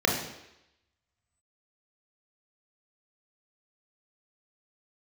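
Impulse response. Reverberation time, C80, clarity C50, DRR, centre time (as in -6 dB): 0.85 s, 7.5 dB, 4.5 dB, -1.0 dB, 39 ms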